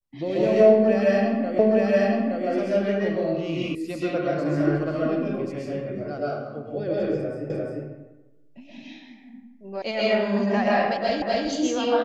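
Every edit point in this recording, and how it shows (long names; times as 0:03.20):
0:01.59: the same again, the last 0.87 s
0:03.75: cut off before it has died away
0:07.50: the same again, the last 0.35 s
0:09.82: cut off before it has died away
0:11.22: the same again, the last 0.25 s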